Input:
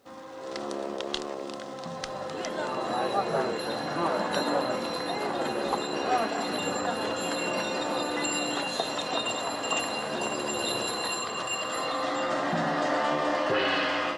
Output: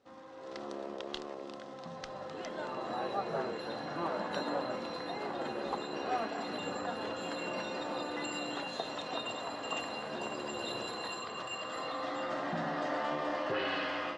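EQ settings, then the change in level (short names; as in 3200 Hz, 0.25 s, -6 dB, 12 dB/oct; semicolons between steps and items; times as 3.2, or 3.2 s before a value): air absorption 83 m; -7.5 dB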